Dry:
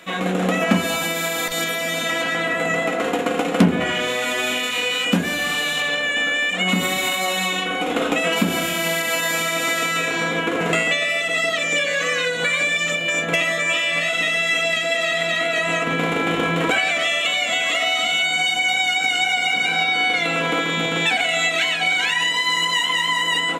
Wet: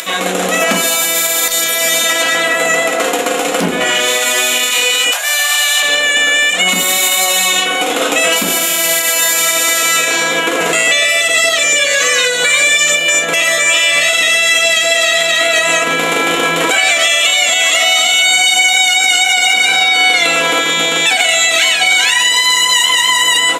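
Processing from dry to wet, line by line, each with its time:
5.11–5.83 Chebyshev high-pass 650 Hz, order 4
whole clip: upward compressor, threshold -30 dBFS; tone controls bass -14 dB, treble +12 dB; limiter -10 dBFS; gain +8 dB

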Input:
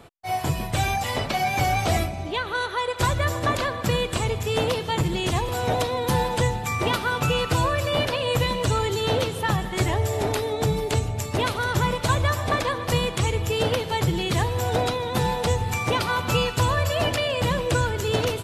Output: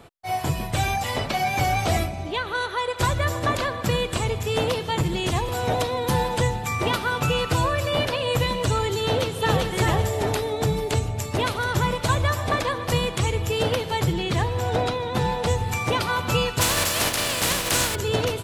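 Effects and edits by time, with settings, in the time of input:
9.02–9.71 echo throw 0.39 s, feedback 30%, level -2 dB
14.13–15.46 high shelf 8100 Hz -11 dB
16.6–17.94 spectral contrast lowered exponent 0.31

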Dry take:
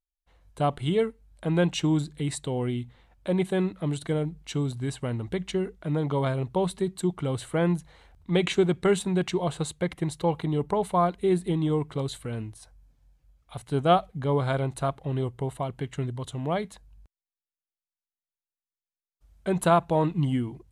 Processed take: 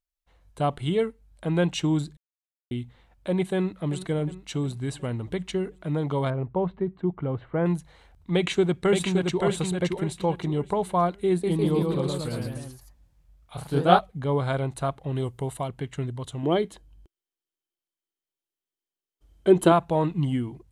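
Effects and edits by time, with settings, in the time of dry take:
2.17–2.71 mute
3.55–3.98 echo throw 0.36 s, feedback 60%, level -13.5 dB
6.3–7.66 Bessel low-pass 1500 Hz, order 4
8.35–9.41 echo throw 0.57 s, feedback 30%, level -3.5 dB
11.28–13.99 echoes that change speed 0.154 s, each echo +1 st, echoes 3
15.15–15.68 high shelf 4500 Hz +9 dB
16.43–19.72 small resonant body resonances 350/3100 Hz, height 14 dB, ringing for 30 ms

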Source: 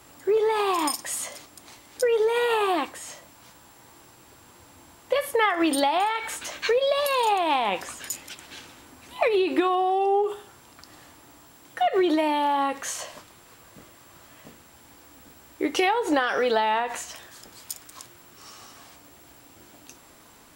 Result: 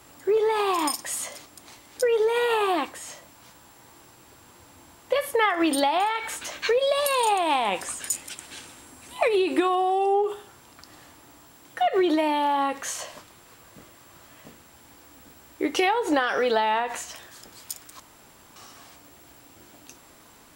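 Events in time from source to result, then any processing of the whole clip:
6.79–10.14 bell 8800 Hz +10 dB 0.55 oct
18–18.56 room tone

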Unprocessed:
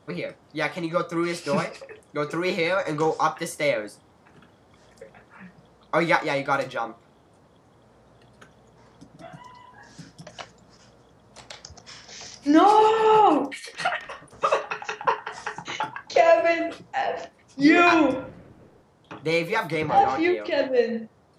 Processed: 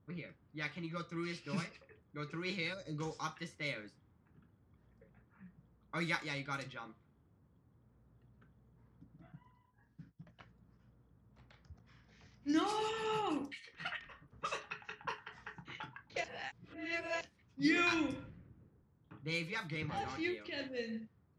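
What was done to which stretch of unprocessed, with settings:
2.73–2.99 spectral gain 750–3800 Hz -15 dB
9.32–10.4 expander -44 dBFS
16.24–17.21 reverse
whole clip: low-pass opened by the level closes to 1100 Hz, open at -17 dBFS; passive tone stack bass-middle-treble 6-0-2; gain +6.5 dB

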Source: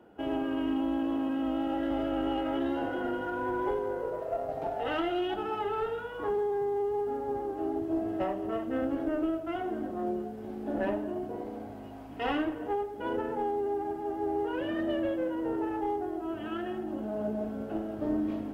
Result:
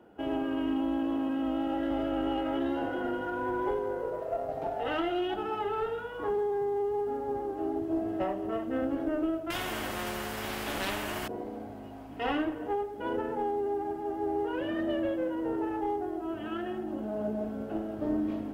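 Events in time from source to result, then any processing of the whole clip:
9.5–11.28 spectral compressor 4:1

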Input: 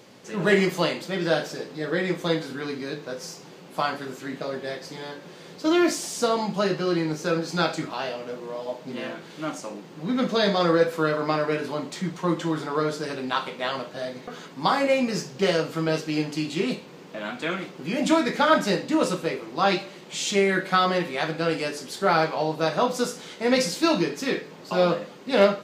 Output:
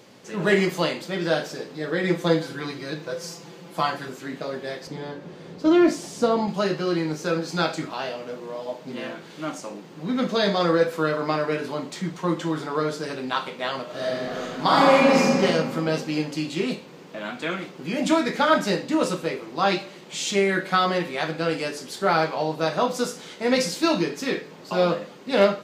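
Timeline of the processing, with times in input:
2.03–4.09 comb 5.9 ms, depth 72%
4.87–6.48 tilt -2.5 dB/oct
13.84–15.39 reverb throw, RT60 2.3 s, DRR -6 dB

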